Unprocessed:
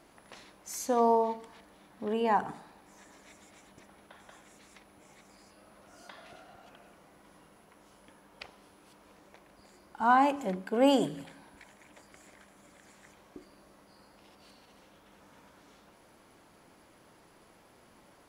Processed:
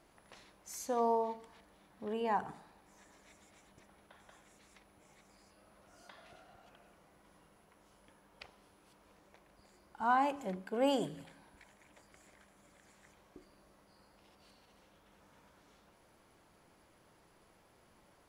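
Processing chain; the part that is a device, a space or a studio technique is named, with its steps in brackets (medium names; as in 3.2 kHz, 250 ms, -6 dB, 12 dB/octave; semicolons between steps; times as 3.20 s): low shelf boost with a cut just above (bass shelf 100 Hz +6 dB; peaking EQ 260 Hz -3.5 dB 0.51 oct); trim -6.5 dB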